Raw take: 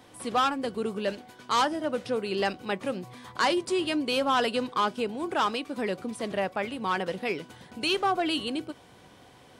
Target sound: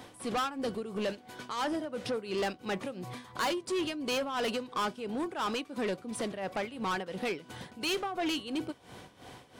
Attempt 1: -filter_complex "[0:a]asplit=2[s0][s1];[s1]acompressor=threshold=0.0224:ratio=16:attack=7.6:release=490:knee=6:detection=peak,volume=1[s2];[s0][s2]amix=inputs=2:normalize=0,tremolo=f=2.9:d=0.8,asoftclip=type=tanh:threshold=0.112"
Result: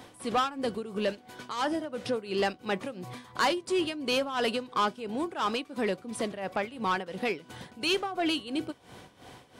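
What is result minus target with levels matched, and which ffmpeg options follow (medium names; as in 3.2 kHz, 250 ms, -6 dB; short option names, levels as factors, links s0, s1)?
saturation: distortion -9 dB
-filter_complex "[0:a]asplit=2[s0][s1];[s1]acompressor=threshold=0.0224:ratio=16:attack=7.6:release=490:knee=6:detection=peak,volume=1[s2];[s0][s2]amix=inputs=2:normalize=0,tremolo=f=2.9:d=0.8,asoftclip=type=tanh:threshold=0.0422"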